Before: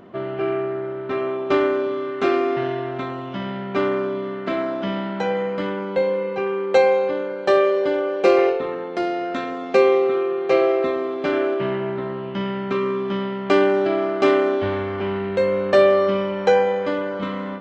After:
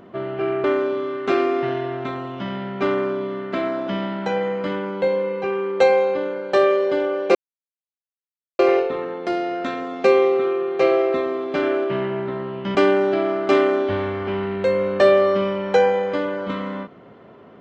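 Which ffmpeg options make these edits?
-filter_complex "[0:a]asplit=4[a][b][c][d];[a]atrim=end=0.642[e];[b]atrim=start=1.578:end=8.29,asetpts=PTS-STARTPTS,afade=t=out:st=6.708:d=0.004:c=hsin,apad=pad_dur=1.24[f];[c]atrim=start=8.29:end=12.452,asetpts=PTS-STARTPTS,afade=t=in:d=0.004:c=hsin[g];[d]atrim=start=13.478[h];[f][g]concat=n=2:v=0:a=1[i];[e][i]acrossfade=d=0.004:c1=hsin:c2=hsin[j];[j][h]acrossfade=d=0.004:c1=hsin:c2=hsin"

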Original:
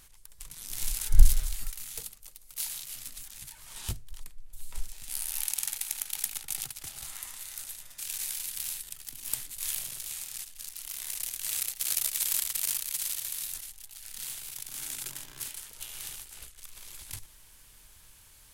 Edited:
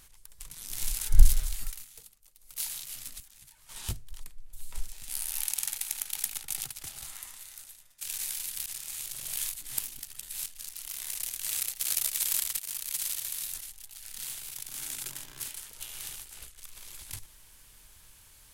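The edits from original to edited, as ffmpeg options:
-filter_complex "[0:a]asplit=9[a][b][c][d][e][f][g][h][i];[a]atrim=end=1.87,asetpts=PTS-STARTPTS,afade=t=out:st=1.74:d=0.13:silence=0.266073[j];[b]atrim=start=1.87:end=2.35,asetpts=PTS-STARTPTS,volume=-11.5dB[k];[c]atrim=start=2.35:end=3.202,asetpts=PTS-STARTPTS,afade=t=in:d=0.13:silence=0.266073[l];[d]atrim=start=3.198:end=3.692,asetpts=PTS-STARTPTS,volume=-9.5dB[m];[e]atrim=start=3.688:end=8.01,asetpts=PTS-STARTPTS,afade=t=out:st=3.192:d=1.13:silence=0.158489[n];[f]atrim=start=8.01:end=8.662,asetpts=PTS-STARTPTS,afade=t=in:d=0.004:c=hsin:silence=0.158489[o];[g]atrim=start=8.658:end=10.462,asetpts=PTS-STARTPTS,areverse[p];[h]atrim=start=10.458:end=12.59,asetpts=PTS-STARTPTS,afade=t=out:st=2.128:d=0.004:c=hsin:silence=0.177828[q];[i]atrim=start=12.59,asetpts=PTS-STARTPTS,afade=t=in:d=0.33:silence=0.177828[r];[j][k][l]concat=n=3:v=0:a=1[s];[s][m]acrossfade=d=0.004:c1=hsin:c2=hsin[t];[n][o]concat=n=2:v=0:a=1[u];[t][u]acrossfade=d=0.004:c1=hsin:c2=hsin[v];[v][p]acrossfade=d=0.004:c1=hsin:c2=hsin[w];[q][r]concat=n=2:v=0:a=1[x];[w][x]acrossfade=d=0.004:c1=hsin:c2=hsin"

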